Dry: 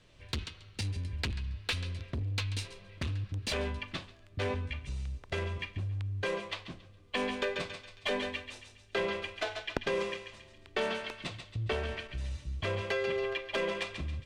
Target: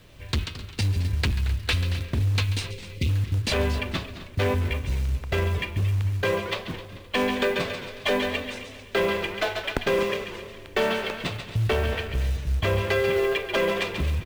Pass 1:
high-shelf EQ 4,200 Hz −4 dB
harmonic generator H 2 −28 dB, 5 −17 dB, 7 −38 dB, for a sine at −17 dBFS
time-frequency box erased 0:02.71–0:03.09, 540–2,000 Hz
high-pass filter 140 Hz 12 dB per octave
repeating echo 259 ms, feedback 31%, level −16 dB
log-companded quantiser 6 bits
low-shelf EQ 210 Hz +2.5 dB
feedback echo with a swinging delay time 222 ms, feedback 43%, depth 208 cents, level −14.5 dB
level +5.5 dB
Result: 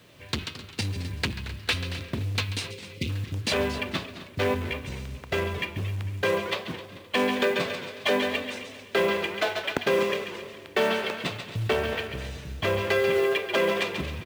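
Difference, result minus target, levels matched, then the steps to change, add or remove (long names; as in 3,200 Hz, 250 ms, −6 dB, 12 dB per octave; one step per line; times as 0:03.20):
125 Hz band −5.5 dB
remove: high-pass filter 140 Hz 12 dB per octave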